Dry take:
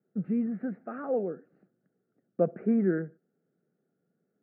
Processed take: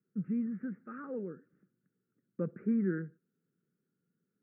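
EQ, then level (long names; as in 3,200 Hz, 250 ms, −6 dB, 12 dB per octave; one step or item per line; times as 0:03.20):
low-shelf EQ 120 Hz +8 dB
parametric band 1,200 Hz +2.5 dB 0.77 octaves
phaser with its sweep stopped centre 1,700 Hz, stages 4
−5.0 dB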